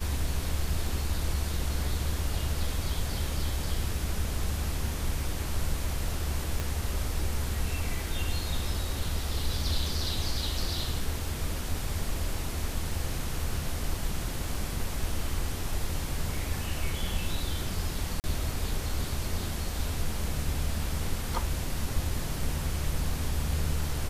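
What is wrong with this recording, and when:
6.60 s: pop -17 dBFS
18.20–18.24 s: dropout 39 ms

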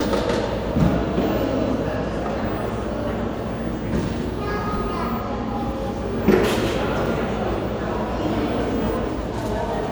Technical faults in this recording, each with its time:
7.06 s: dropout 4.5 ms

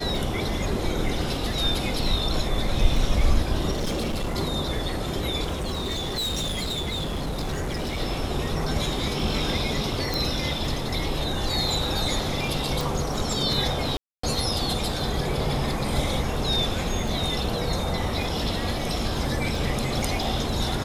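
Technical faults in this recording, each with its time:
crackle 17 per s -31 dBFS
3.71–4.36 s: clipped -23.5 dBFS
5.54–8.01 s: clipped -24.5 dBFS
10.14 s: pop
12.81 s: pop
13.97–14.23 s: dropout 264 ms

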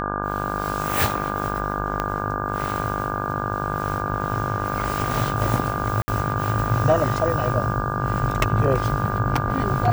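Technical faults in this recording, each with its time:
buzz 50 Hz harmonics 33 -28 dBFS
whine 1.2 kHz -29 dBFS
2.00 s: pop -10 dBFS
6.02–6.08 s: dropout 60 ms

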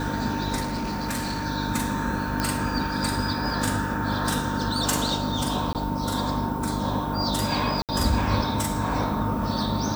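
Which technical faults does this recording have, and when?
hum 50 Hz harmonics 6 -30 dBFS
whine 910 Hz -32 dBFS
0.62–1.46 s: clipped -24.5 dBFS
2.40 s: pop -10 dBFS
5.73–5.75 s: dropout 18 ms
7.82–7.89 s: dropout 68 ms

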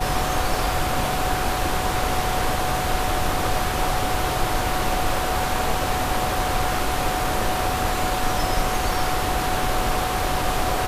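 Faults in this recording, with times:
whine 740 Hz -27 dBFS

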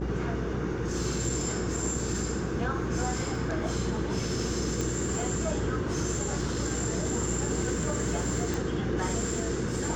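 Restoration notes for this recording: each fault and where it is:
buzz 60 Hz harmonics 9 -35 dBFS
4.81 s: pop -18 dBFS
8.54 s: pop

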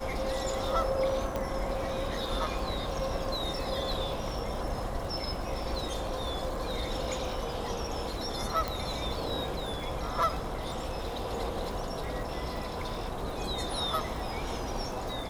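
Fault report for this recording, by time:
crackle 130 per s -39 dBFS
1.36 s: pop -19 dBFS
8.68 s: pop

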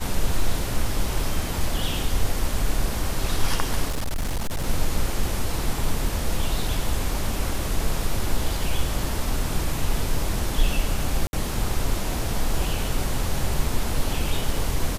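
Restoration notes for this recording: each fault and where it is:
3.89–4.68 s: clipped -21.5 dBFS
11.27–11.33 s: dropout 61 ms

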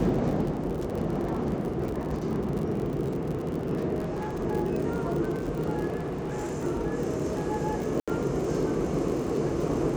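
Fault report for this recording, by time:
crackle 51 per s -32 dBFS
3.99–4.43 s: clipped -28 dBFS
5.96–6.65 s: clipped -28.5 dBFS
8.00–8.08 s: dropout 76 ms

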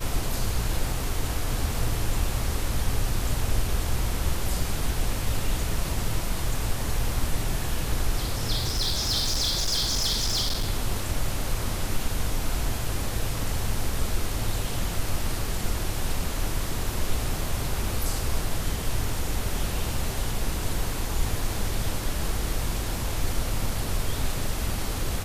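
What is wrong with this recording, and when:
8.55–10.70 s: clipped -21 dBFS

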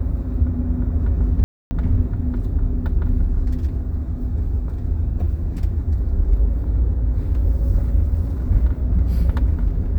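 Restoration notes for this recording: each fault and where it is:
1.44–1.71 s: dropout 270 ms

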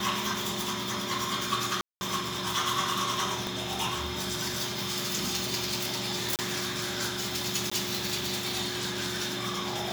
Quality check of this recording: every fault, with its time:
1.81–2.01 s: dropout 200 ms
3.47 s: pop
6.36–6.39 s: dropout 28 ms
7.70–7.71 s: dropout 15 ms

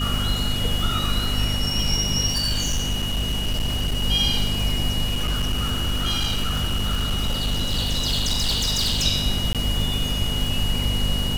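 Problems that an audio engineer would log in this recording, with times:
crackle 420 per s -29 dBFS
hum 50 Hz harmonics 5 -27 dBFS
whine 2.9 kHz -27 dBFS
2.26–4.04 s: clipped -19 dBFS
5.04–9.04 s: clipped -18.5 dBFS
9.53–9.55 s: dropout 17 ms

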